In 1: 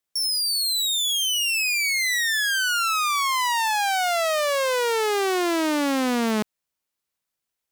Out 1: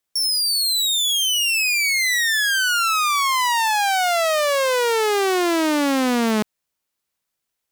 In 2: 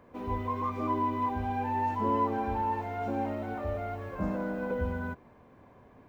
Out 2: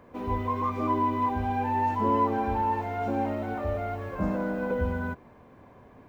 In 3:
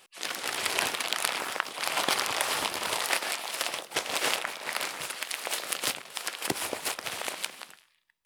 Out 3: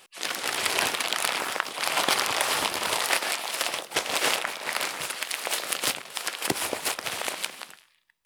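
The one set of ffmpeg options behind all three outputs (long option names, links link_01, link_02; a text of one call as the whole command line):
ffmpeg -i in.wav -af "acontrast=87,volume=-3.5dB" out.wav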